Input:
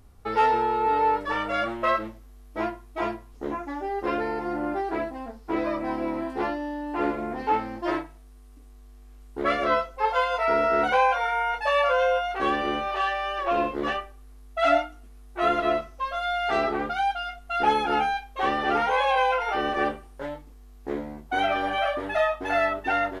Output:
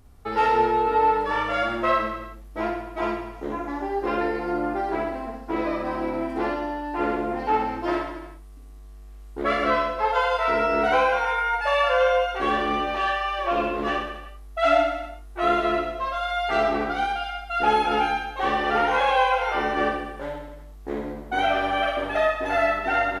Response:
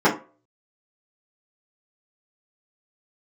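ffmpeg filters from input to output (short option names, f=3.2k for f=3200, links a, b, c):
-af "aecho=1:1:60|126|198.6|278.5|366.3:0.631|0.398|0.251|0.158|0.1"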